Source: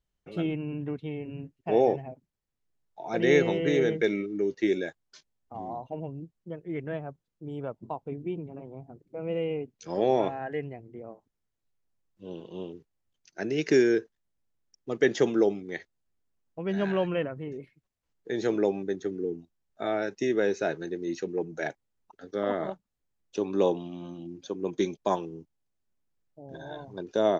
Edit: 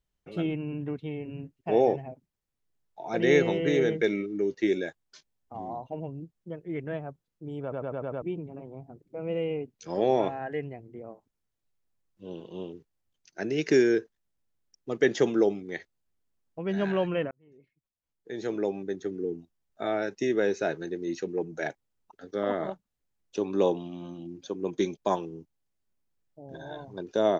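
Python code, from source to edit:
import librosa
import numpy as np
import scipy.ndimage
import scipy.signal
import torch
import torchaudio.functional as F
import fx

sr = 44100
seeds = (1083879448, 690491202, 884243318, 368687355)

y = fx.edit(x, sr, fx.stutter_over(start_s=7.62, slice_s=0.1, count=6),
    fx.fade_in_span(start_s=17.31, length_s=2.02), tone=tone)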